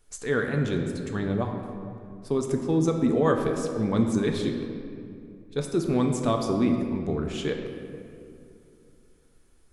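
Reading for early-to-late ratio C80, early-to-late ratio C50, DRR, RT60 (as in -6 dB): 6.0 dB, 5.0 dB, 2.5 dB, 2.6 s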